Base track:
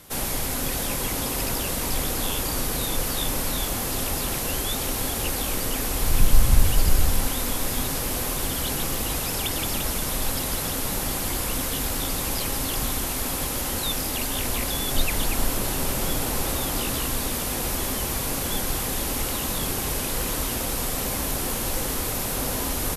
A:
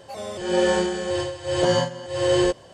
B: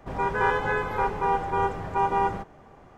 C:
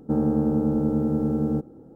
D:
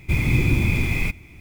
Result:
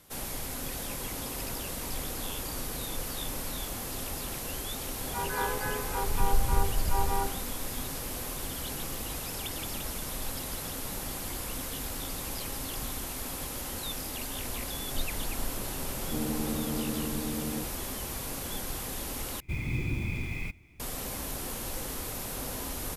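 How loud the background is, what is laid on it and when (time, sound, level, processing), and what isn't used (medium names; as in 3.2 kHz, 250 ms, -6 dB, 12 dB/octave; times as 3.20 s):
base track -9.5 dB
4.93 s: add B -8.5 dB + phase dispersion lows, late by 77 ms, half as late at 860 Hz
16.03 s: add C -11.5 dB + high-pass 63 Hz
19.40 s: replace with D -12.5 dB
not used: A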